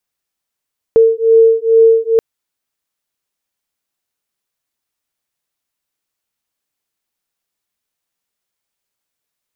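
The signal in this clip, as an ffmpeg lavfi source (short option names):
-f lavfi -i "aevalsrc='0.335*(sin(2*PI*451*t)+sin(2*PI*453.3*t))':d=1.23:s=44100"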